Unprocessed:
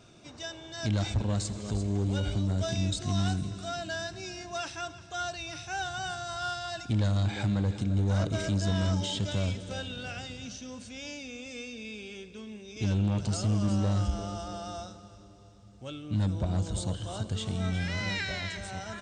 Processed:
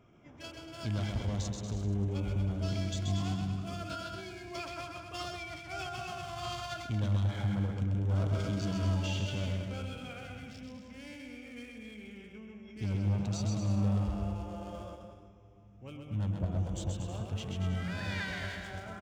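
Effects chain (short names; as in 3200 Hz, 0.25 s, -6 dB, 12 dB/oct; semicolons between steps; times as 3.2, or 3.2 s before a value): Wiener smoothing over 9 samples; bouncing-ball echo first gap 0.13 s, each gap 0.8×, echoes 5; formant shift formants -2 st; gain -5.5 dB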